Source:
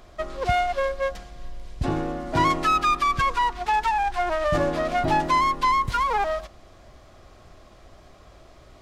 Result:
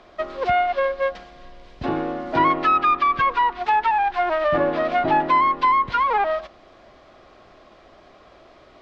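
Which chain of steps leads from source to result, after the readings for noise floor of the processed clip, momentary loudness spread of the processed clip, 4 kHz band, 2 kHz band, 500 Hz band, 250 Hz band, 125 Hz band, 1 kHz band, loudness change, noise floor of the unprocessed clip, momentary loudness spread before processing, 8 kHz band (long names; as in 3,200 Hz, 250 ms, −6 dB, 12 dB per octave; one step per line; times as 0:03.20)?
−51 dBFS, 9 LU, −2.0 dB, +2.5 dB, +3.5 dB, +2.0 dB, −6.0 dB, +3.5 dB, +3.0 dB, −51 dBFS, 9 LU, below −15 dB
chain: treble cut that deepens with the level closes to 2,500 Hz, closed at −17.5 dBFS
three-way crossover with the lows and the highs turned down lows −14 dB, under 200 Hz, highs −23 dB, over 5,000 Hz
level +3.5 dB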